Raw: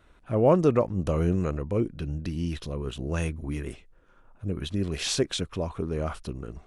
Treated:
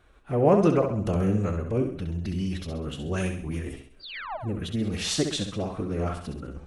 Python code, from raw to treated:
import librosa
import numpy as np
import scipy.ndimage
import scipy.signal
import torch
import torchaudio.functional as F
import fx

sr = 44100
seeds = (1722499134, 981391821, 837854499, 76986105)

y = fx.spec_paint(x, sr, seeds[0], shape='fall', start_s=4.01, length_s=0.36, low_hz=530.0, high_hz=4800.0, level_db=-32.0)
y = fx.room_flutter(y, sr, wall_m=11.3, rt60_s=0.59)
y = fx.pitch_keep_formants(y, sr, semitones=2.0)